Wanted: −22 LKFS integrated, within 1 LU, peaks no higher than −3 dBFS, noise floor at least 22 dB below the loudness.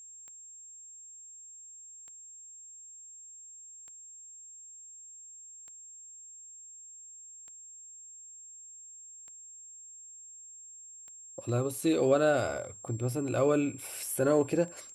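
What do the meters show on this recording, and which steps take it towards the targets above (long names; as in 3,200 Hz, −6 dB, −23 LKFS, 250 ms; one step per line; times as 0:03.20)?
number of clicks 9; interfering tone 7,500 Hz; level of the tone −47 dBFS; integrated loudness −29.5 LKFS; sample peak −13.5 dBFS; target loudness −22.0 LKFS
→ click removal
notch filter 7,500 Hz, Q 30
level +7.5 dB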